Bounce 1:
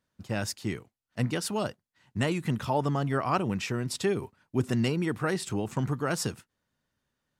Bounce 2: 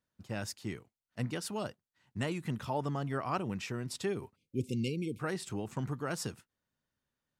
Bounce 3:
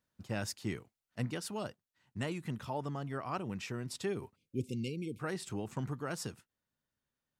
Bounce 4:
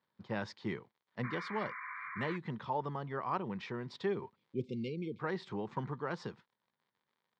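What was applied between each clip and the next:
spectral selection erased 4.36–5.19 s, 550–2100 Hz; trim -7 dB
gain riding within 5 dB 0.5 s; trim -2 dB
painted sound noise, 1.23–2.37 s, 990–2400 Hz -46 dBFS; crackle 93 per s -61 dBFS; cabinet simulation 180–3700 Hz, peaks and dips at 280 Hz -8 dB, 660 Hz -6 dB, 970 Hz +5 dB, 1.4 kHz -4 dB, 2.7 kHz -10 dB; trim +3.5 dB

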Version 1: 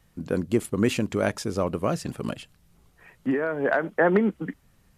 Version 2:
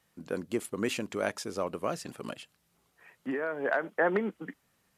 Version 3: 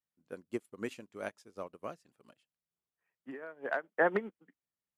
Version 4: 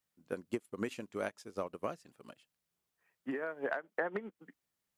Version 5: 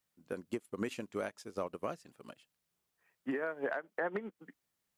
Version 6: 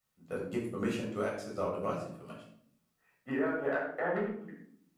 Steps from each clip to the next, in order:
high-pass 430 Hz 6 dB/octave; trim -4 dB
upward expansion 2.5:1, over -42 dBFS
compression 12:1, threshold -40 dBFS, peak gain reduction 18 dB; trim +8 dB
peak limiter -26 dBFS, peak gain reduction 5.5 dB; trim +2 dB
simulated room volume 1000 m³, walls furnished, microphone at 6.6 m; trim -4 dB

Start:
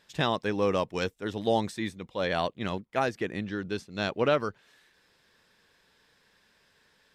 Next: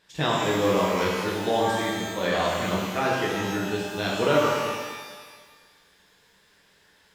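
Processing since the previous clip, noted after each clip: pitch-shifted reverb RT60 1.5 s, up +12 st, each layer -8 dB, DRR -5 dB; trim -1.5 dB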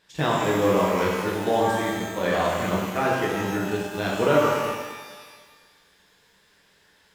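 dynamic bell 4.2 kHz, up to -7 dB, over -45 dBFS, Q 1; in parallel at -11.5 dB: small samples zeroed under -27.5 dBFS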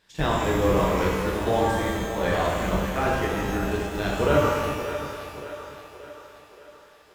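octave divider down 2 oct, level -1 dB; on a send: two-band feedback delay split 340 Hz, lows 340 ms, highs 577 ms, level -10.5 dB; on the sum: trim -1.5 dB

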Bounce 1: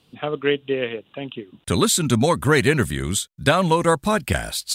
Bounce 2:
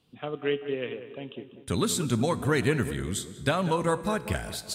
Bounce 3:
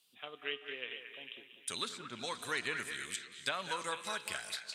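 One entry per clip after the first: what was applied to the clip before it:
bass shelf 490 Hz +3 dB; feedback comb 61 Hz, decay 1.4 s, harmonics all, mix 50%; tape echo 193 ms, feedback 50%, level -10 dB, low-pass 1.5 kHz; trim -4.5 dB
differentiator; low-pass that closes with the level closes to 1.6 kHz, closed at -33.5 dBFS; repeats whose band climbs or falls 224 ms, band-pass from 1.7 kHz, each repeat 0.7 oct, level -5 dB; trim +6.5 dB

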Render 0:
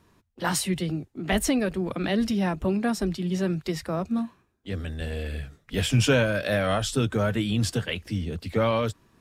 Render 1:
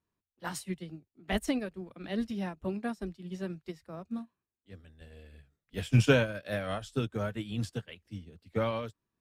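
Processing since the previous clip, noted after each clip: upward expansion 2.5:1, over -34 dBFS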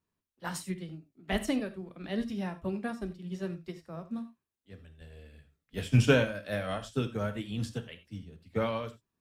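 gated-style reverb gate 110 ms flat, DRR 9.5 dB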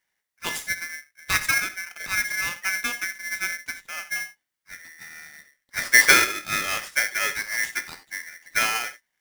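polarity switched at an audio rate 1.9 kHz; trim +7 dB

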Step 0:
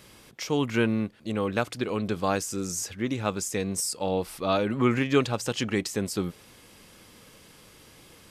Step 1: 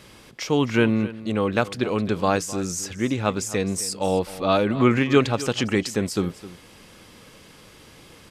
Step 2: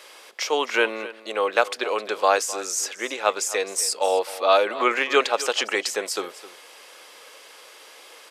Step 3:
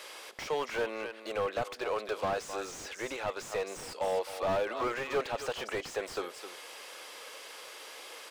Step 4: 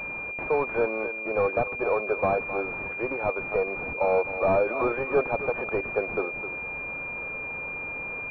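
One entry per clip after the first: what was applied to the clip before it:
treble shelf 9.2 kHz -9 dB; delay 260 ms -16.5 dB; trim +5 dB
high-pass 480 Hz 24 dB/octave; trim +4 dB
compression 1.5:1, threshold -41 dBFS, peak gain reduction 10 dB; slew-rate limiter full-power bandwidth 35 Hz
class-D stage that switches slowly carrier 2.4 kHz; trim +8.5 dB

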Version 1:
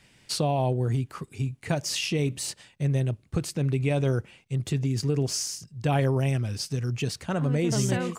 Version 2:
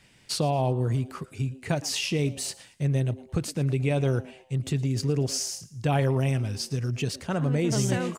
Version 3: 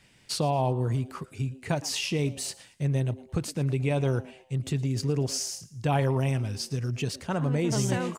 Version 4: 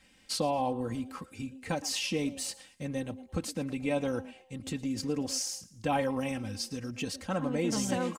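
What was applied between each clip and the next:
frequency-shifting echo 113 ms, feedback 36%, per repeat +130 Hz, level -20 dB
dynamic bell 950 Hz, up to +5 dB, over -47 dBFS, Q 3; trim -1.5 dB
comb 3.8 ms, depth 79%; trim -4 dB

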